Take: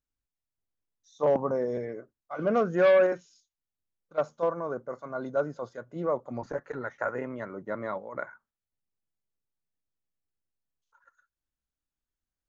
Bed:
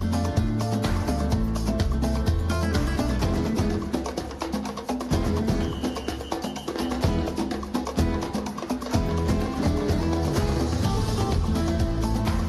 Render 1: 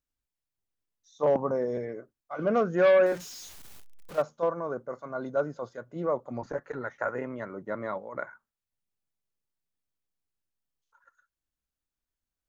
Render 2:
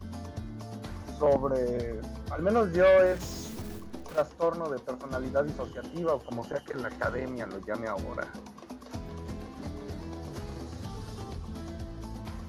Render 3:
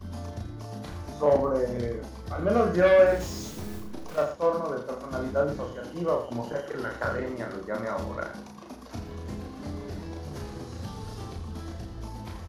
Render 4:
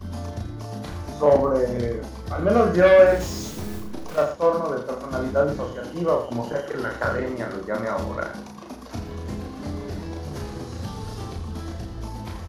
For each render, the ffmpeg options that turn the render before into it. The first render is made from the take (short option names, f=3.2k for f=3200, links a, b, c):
-filter_complex "[0:a]asettb=1/sr,asplit=3[a][b][c];[a]atrim=end=3.064[d];[b]atrim=start=3.06:end=4.22,asetpts=PTS-STARTPTS,afade=t=in:d=0.004:c=qsin,afade=t=out:st=1.156:d=0.004:c=qsin,aeval=exprs='val(0)+0.5*0.0119*sgn(val(0))':c=same[e];[c]atrim=start=4.216[f];[d][e]acrossfade=d=0.004:c1=hsin:c2=qsin[g];[g][f]acrossfade=d=0.004:c1=qsin:c2=hsin"
-filter_complex "[1:a]volume=-15.5dB[a];[0:a][a]amix=inputs=2:normalize=0"
-filter_complex "[0:a]asplit=2[a][b];[b]adelay=34,volume=-3dB[c];[a][c]amix=inputs=2:normalize=0,asplit=2[d][e];[e]aecho=0:1:83:0.316[f];[d][f]amix=inputs=2:normalize=0"
-af "volume=5dB"